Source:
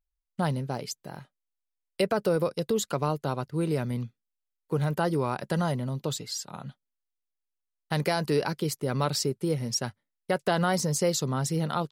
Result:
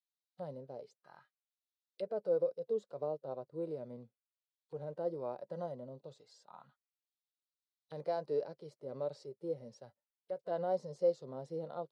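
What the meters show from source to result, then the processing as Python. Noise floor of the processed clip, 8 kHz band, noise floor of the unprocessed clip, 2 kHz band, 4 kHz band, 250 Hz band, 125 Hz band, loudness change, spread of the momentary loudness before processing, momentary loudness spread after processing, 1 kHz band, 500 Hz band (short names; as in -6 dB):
under -85 dBFS, under -35 dB, -85 dBFS, -25.5 dB, under -25 dB, -18.0 dB, -22.5 dB, -11.0 dB, 12 LU, 19 LU, -14.5 dB, -7.0 dB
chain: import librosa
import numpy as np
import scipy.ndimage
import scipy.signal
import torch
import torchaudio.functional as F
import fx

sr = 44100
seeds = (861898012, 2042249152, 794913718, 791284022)

y = fx.auto_wah(x, sr, base_hz=560.0, top_hz=3800.0, q=3.0, full_db=-32.0, direction='down')
y = fx.hpss(y, sr, part='percussive', gain_db=-13)
y = fx.band_shelf(y, sr, hz=5900.0, db=10.0, octaves=1.7)
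y = y * librosa.db_to_amplitude(-1.5)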